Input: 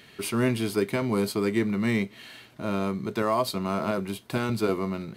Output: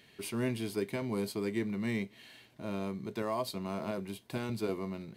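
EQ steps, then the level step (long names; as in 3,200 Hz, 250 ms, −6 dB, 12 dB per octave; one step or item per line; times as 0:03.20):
parametric band 1,300 Hz −7.5 dB 0.32 octaves
−8.5 dB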